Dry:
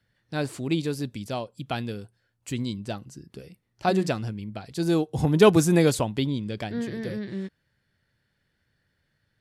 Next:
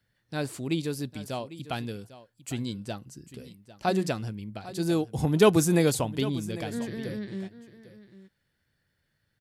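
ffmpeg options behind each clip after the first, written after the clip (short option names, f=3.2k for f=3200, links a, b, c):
-af "highshelf=f=9k:g=8,aecho=1:1:800:0.158,volume=-3dB"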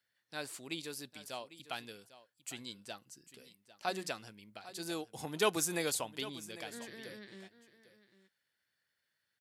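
-af "highpass=f=1.2k:p=1,volume=-3.5dB"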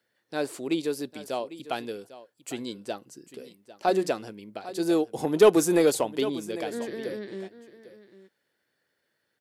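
-filter_complex "[0:a]equalizer=f=390:w=0.57:g=15,asplit=2[a][b];[b]asoftclip=type=hard:threshold=-21dB,volume=-6dB[c];[a][c]amix=inputs=2:normalize=0"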